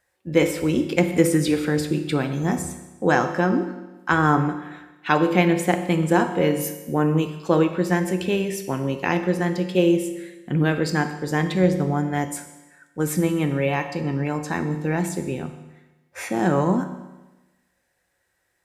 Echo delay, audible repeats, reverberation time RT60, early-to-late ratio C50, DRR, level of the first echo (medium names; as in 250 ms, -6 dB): no echo, no echo, 1.1 s, 9.5 dB, 6.5 dB, no echo